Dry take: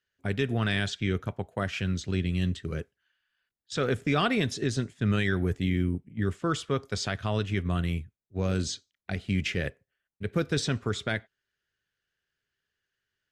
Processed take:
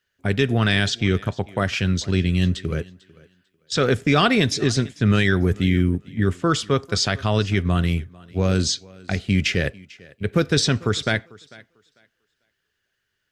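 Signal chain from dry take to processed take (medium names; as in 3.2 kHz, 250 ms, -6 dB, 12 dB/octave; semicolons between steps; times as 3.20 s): dynamic bell 5 kHz, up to +5 dB, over -50 dBFS, Q 1.8; on a send: thinning echo 446 ms, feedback 20%, high-pass 160 Hz, level -22 dB; on the sum: trim +8 dB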